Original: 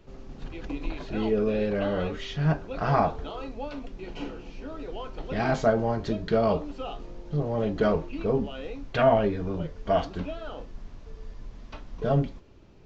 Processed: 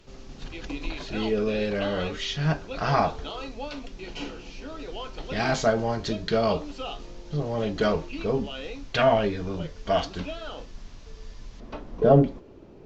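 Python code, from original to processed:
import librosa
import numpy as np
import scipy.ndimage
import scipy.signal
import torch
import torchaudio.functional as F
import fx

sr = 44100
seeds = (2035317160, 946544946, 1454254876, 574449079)

y = fx.peak_eq(x, sr, hz=fx.steps((0.0, 5800.0), (11.6, 410.0)), db=11.5, octaves=2.7)
y = F.gain(torch.from_numpy(y), -1.0).numpy()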